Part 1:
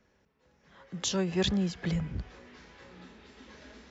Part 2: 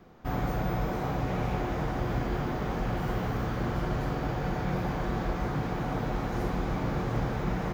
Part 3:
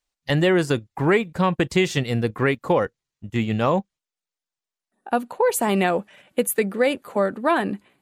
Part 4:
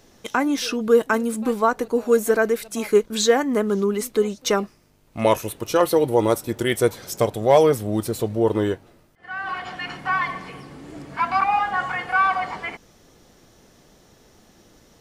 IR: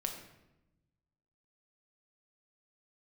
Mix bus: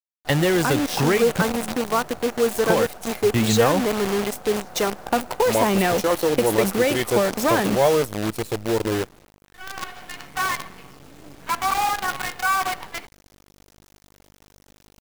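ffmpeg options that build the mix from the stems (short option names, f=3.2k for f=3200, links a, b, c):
-filter_complex "[0:a]highpass=f=68:w=0.5412,highpass=f=68:w=1.3066,asoftclip=type=tanh:threshold=-31dB,volume=-12dB[a];[1:a]bandpass=f=680:t=q:w=2.3:csg=0,volume=-4dB[b];[2:a]acrossover=split=3000|6500[c][d][e];[c]acompressor=threshold=-21dB:ratio=4[f];[d]acompressor=threshold=-41dB:ratio=4[g];[e]acompressor=threshold=-42dB:ratio=4[h];[f][g][h]amix=inputs=3:normalize=0,volume=-1dB,asplit=3[i][j][k];[i]atrim=end=1.42,asetpts=PTS-STARTPTS,afade=t=out:st=1.416:d=0.004:c=hsin[l];[j]atrim=start=1.42:end=2.55,asetpts=PTS-STARTPTS,volume=0[m];[k]atrim=start=2.55,asetpts=PTS-STARTPTS,afade=t=in:d=0.004:c=hsin[n];[l][m][n]concat=n=3:v=0:a=1[o];[3:a]aeval=exprs='val(0)+0.00316*(sin(2*PI*50*n/s)+sin(2*PI*2*50*n/s)/2+sin(2*PI*3*50*n/s)/3+sin(2*PI*4*50*n/s)/4+sin(2*PI*5*50*n/s)/5)':c=same,adelay=300,volume=-8.5dB,asplit=2[p][q];[q]volume=-23dB[r];[4:a]atrim=start_sample=2205[s];[r][s]afir=irnorm=-1:irlink=0[t];[a][b][o][p][t]amix=inputs=5:normalize=0,acrusher=bits=6:dc=4:mix=0:aa=0.000001,acontrast=25,acrusher=bits=4:mode=log:mix=0:aa=0.000001"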